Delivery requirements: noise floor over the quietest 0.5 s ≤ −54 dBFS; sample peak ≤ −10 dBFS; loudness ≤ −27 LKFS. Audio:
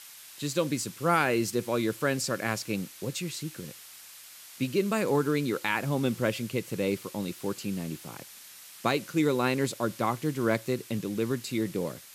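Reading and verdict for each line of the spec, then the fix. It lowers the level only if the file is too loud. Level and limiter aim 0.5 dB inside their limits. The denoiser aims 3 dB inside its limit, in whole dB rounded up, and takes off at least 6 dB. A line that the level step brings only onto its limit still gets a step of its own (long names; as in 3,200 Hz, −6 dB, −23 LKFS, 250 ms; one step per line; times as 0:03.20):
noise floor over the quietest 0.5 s −49 dBFS: out of spec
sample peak −11.0 dBFS: in spec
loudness −29.5 LKFS: in spec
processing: broadband denoise 8 dB, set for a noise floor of −49 dBFS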